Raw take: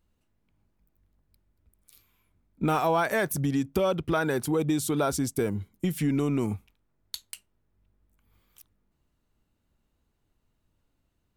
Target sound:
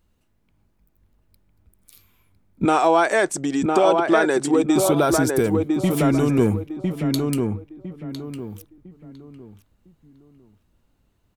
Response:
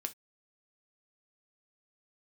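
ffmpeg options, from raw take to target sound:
-filter_complex "[0:a]asettb=1/sr,asplit=3[a][b][c];[a]atrim=end=2.654[d];[b]atrim=start=2.65:end=4.76,asetpts=PTS-STARTPTS,afade=t=in:d=0.004:c=qsin,afade=t=out:st=2.106:d=0.004:c=qsin,highpass=330,equalizer=f=340:t=q:w=4:g=8,equalizer=f=720:t=q:w=4:g=3,equalizer=f=7.9k:t=q:w=4:g=10,lowpass=f=8.2k:w=0.5412,lowpass=f=8.2k:w=1.3066[e];[c]atrim=start=4.756[f];[d][e]acrossfade=d=0.004:c1=hsin:c2=qsin[g];[g][f]acrossfade=d=0.004:c1=qsin:c2=hsin,asplit=2[h][i];[i]adelay=1005,lowpass=f=1.7k:p=1,volume=-3dB,asplit=2[j][k];[k]adelay=1005,lowpass=f=1.7k:p=1,volume=0.32,asplit=2[l][m];[m]adelay=1005,lowpass=f=1.7k:p=1,volume=0.32,asplit=2[n][o];[o]adelay=1005,lowpass=f=1.7k:p=1,volume=0.32[p];[h][j][l][n][p]amix=inputs=5:normalize=0,volume=6.5dB"

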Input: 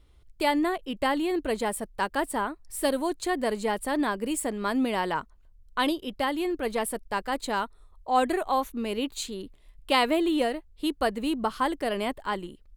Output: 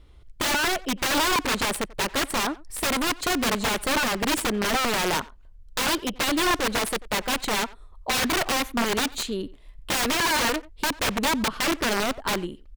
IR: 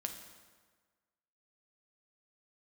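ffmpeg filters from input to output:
-filter_complex "[0:a]asettb=1/sr,asplit=3[a][b][c];[a]atrim=end=11.074[d];[b]atrim=start=11.07:end=12.26,asetpts=PTS-STARTPTS,afade=t=in:d=0.004:c=qsin,afade=t=out:st=1.186:d=0.004:c=qsin,highshelf=f=2.6k:g=-9.5[e];[c]atrim=start=12.256[f];[d][e]acrossfade=d=0.004:c1=hsin:c2=qsin[g];[g][f]acrossfade=d=0.004:c1=qsin:c2=hsin,asplit=2[h][i];[i]acrusher=bits=3:mix=0:aa=0.5,volume=-8dB[j];[h][j]amix=inputs=2:normalize=0,aeval=exprs='(mod(14.1*val(0)+1,2)-1)/14.1':c=same,highshelf=f=6.9k:g=-8,asplit=2[k][l];[l]adelay=90,highpass=300,lowpass=3.4k,asoftclip=type=hard:threshold=-32dB,volume=-18dB[m];[k][m]amix=inputs=2:normalize=0,volume=7dB"

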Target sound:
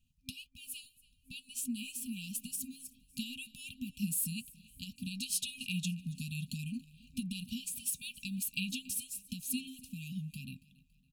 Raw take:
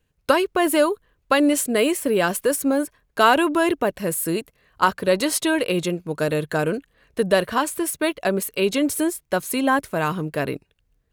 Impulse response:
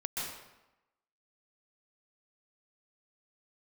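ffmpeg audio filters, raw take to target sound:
-filter_complex "[0:a]acompressor=threshold=-30dB:ratio=6,flanger=delay=3.6:depth=1.9:regen=74:speed=1.8:shape=sinusoidal,dynaudnorm=f=630:g=7:m=5dB,asplit=2[a][b];[b]aecho=0:1:280|560|840:0.0794|0.0342|0.0147[c];[a][c]amix=inputs=2:normalize=0,afftfilt=real='re*(1-between(b*sr/4096,260,2400))':imag='im*(1-between(b*sr/4096,260,2400))':win_size=4096:overlap=0.75"

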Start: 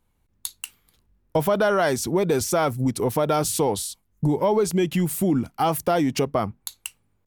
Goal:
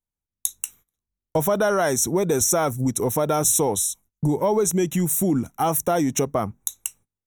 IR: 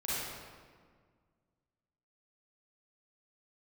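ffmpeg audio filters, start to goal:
-af "agate=range=-23dB:threshold=-53dB:ratio=16:detection=peak,asuperstop=centerf=4700:order=12:qfactor=2.9,highshelf=f=3.9k:t=q:w=3:g=6.5"

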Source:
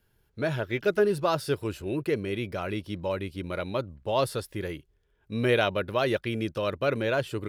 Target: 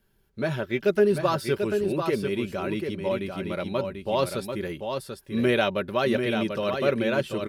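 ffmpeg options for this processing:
-filter_complex "[0:a]equalizer=f=250:w=2.9:g=5,aecho=1:1:5.2:0.44,asplit=2[a][b];[b]aecho=0:1:740:0.501[c];[a][c]amix=inputs=2:normalize=0"

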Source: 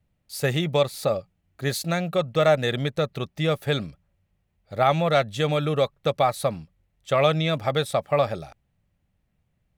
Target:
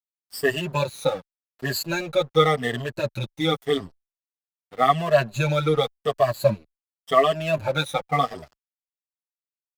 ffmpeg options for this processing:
-filter_complex "[0:a]afftfilt=real='re*pow(10,23/40*sin(2*PI*(1.4*log(max(b,1)*sr/1024/100)/log(2)-(-0.88)*(pts-256)/sr)))':imag='im*pow(10,23/40*sin(2*PI*(1.4*log(max(b,1)*sr/1024/100)/log(2)-(-0.88)*(pts-256)/sr)))':win_size=1024:overlap=0.75,aeval=exprs='sgn(val(0))*max(abs(val(0))-0.0168,0)':c=same,asplit=2[a][b];[b]adelay=7.1,afreqshift=-0.29[c];[a][c]amix=inputs=2:normalize=1"

